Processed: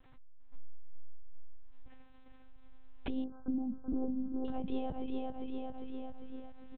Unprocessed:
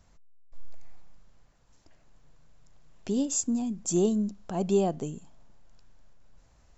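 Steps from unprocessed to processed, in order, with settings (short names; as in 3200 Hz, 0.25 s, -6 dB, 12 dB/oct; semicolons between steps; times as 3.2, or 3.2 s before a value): feedback echo 0.4 s, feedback 42%, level -5 dB; monotone LPC vocoder at 8 kHz 260 Hz; compressor 3:1, threshold -39 dBFS, peak gain reduction 15 dB; 3.24–4.45 brick-wall FIR low-pass 1600 Hz; ending taper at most 260 dB/s; gain +3.5 dB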